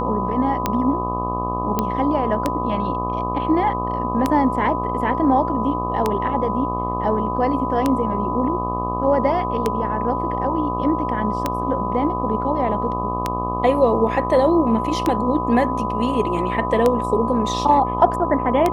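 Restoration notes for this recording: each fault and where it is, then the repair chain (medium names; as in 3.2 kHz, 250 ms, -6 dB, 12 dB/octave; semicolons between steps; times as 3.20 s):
buzz 60 Hz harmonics 21 -26 dBFS
tick 33 1/3 rpm -5 dBFS
whine 1 kHz -24 dBFS
1.79 s: pop -6 dBFS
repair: de-click; de-hum 60 Hz, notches 21; band-stop 1 kHz, Q 30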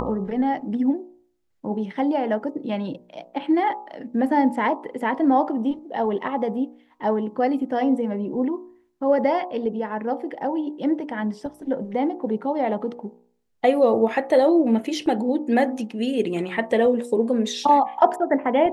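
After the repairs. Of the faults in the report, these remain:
nothing left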